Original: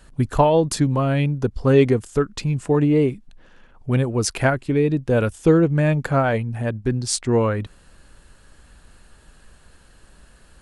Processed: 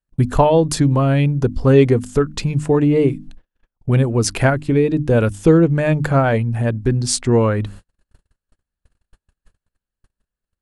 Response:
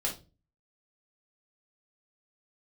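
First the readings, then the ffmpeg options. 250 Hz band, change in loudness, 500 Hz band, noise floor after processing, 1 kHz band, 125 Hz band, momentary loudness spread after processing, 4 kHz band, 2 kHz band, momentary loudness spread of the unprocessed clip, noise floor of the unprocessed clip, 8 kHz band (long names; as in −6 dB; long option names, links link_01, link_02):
+3.5 dB, +3.5 dB, +3.0 dB, below −85 dBFS, +2.5 dB, +4.5 dB, 7 LU, +3.0 dB, +2.5 dB, 8 LU, −52 dBFS, +3.0 dB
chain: -filter_complex "[0:a]bandreject=frequency=50:width_type=h:width=6,bandreject=frequency=100:width_type=h:width=6,bandreject=frequency=150:width_type=h:width=6,bandreject=frequency=200:width_type=h:width=6,bandreject=frequency=250:width_type=h:width=6,bandreject=frequency=300:width_type=h:width=6,agate=range=-45dB:threshold=-42dB:ratio=16:detection=peak,lowshelf=frequency=330:gain=4,asplit=2[link_01][link_02];[link_02]acompressor=threshold=-26dB:ratio=6,volume=0dB[link_03];[link_01][link_03]amix=inputs=2:normalize=0"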